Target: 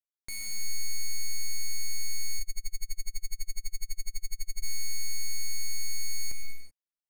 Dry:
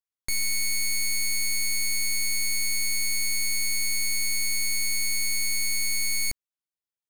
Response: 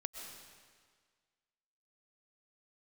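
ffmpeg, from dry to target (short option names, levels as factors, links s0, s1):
-filter_complex "[1:a]atrim=start_sample=2205,afade=t=out:st=0.44:d=0.01,atrim=end_sample=19845[s0];[0:a][s0]afir=irnorm=-1:irlink=0,asplit=3[s1][s2][s3];[s1]afade=t=out:st=2.39:d=0.02[s4];[s2]aeval=exprs='val(0)*pow(10,-37*(0.5-0.5*cos(2*PI*12*n/s))/20)':c=same,afade=t=in:st=2.39:d=0.02,afade=t=out:st=4.62:d=0.02[s5];[s3]afade=t=in:st=4.62:d=0.02[s6];[s4][s5][s6]amix=inputs=3:normalize=0,volume=0.422"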